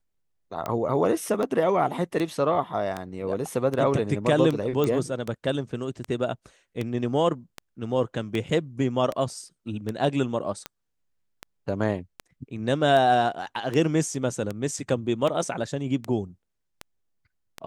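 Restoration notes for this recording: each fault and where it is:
scratch tick 78 rpm −16 dBFS
0:04.84: click −13 dBFS

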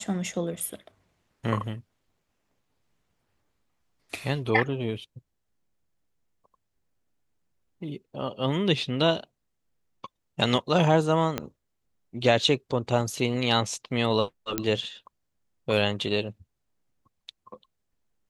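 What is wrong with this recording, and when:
0:11.38: click −12 dBFS
0:14.58: click −9 dBFS

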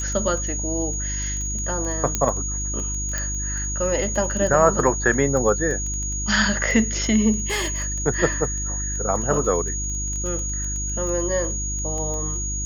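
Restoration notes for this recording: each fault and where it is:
surface crackle 11 per second −27 dBFS
mains hum 50 Hz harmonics 7 −29 dBFS
whistle 6,700 Hz −27 dBFS
0:02.15: click −6 dBFS
0:03.18: click −11 dBFS
0:07.46–0:07.96: clipping −20.5 dBFS

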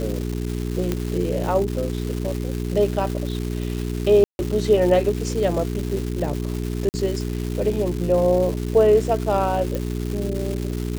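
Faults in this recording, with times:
surface crackle 550 per second −27 dBFS
mains hum 60 Hz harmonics 7 −26 dBFS
0:00.92: click −9 dBFS
0:04.24–0:04.39: drop-out 151 ms
0:06.89–0:06.94: drop-out 49 ms
0:09.75: click

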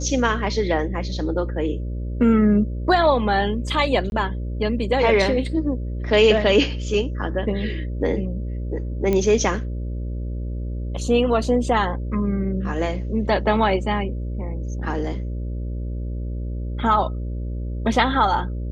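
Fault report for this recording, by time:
mains buzz 60 Hz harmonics 10 −27 dBFS
0:04.10–0:04.12: drop-out 21 ms
0:09.13: click −10 dBFS

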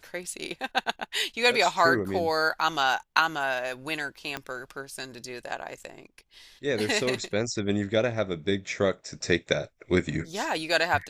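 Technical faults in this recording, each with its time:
0:04.37: click −16 dBFS

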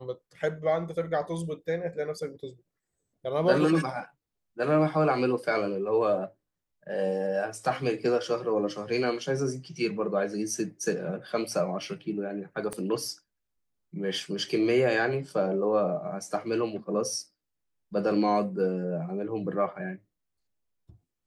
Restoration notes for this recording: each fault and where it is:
0:12.73: click −21 dBFS

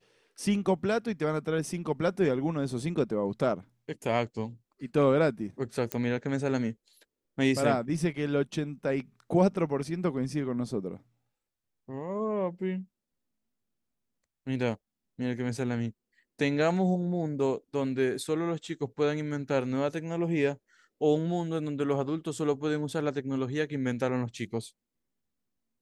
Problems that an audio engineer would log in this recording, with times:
0:05.92: click −14 dBFS

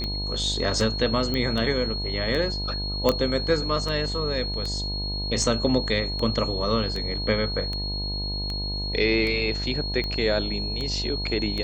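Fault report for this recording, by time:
mains buzz 50 Hz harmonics 20 −31 dBFS
scratch tick 78 rpm −18 dBFS
whistle 4,300 Hz −30 dBFS
0:01.34: click −14 dBFS
0:03.09: click −6 dBFS

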